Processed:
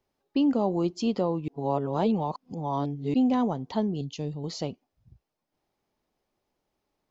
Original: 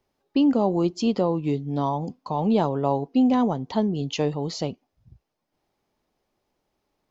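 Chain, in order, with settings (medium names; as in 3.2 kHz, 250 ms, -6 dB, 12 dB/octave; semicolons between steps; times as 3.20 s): 1.48–3.14 s: reverse; 4.01–4.44 s: FFT filter 160 Hz 0 dB, 1.4 kHz -17 dB, 4 kHz -5 dB; trim -4 dB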